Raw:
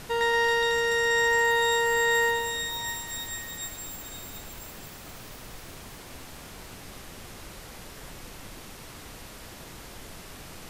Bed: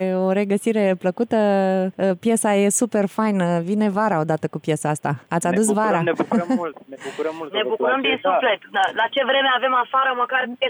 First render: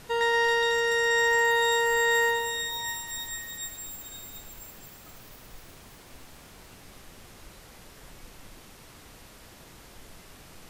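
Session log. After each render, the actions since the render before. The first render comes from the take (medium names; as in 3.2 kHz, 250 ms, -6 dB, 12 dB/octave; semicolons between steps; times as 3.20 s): noise print and reduce 6 dB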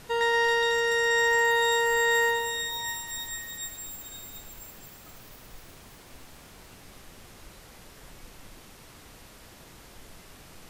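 no audible change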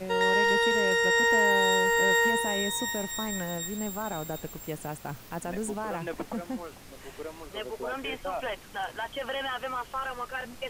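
add bed -15 dB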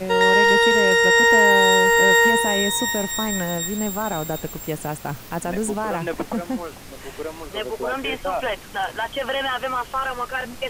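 trim +8.5 dB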